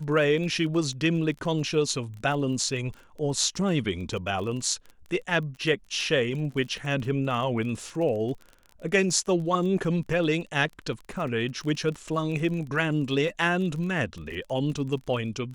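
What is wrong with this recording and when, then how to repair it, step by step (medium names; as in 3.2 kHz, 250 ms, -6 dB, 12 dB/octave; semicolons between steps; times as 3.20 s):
crackle 32 per s -35 dBFS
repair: de-click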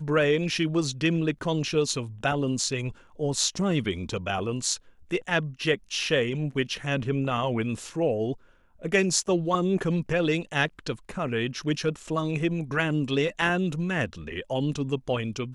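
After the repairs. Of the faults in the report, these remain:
nothing left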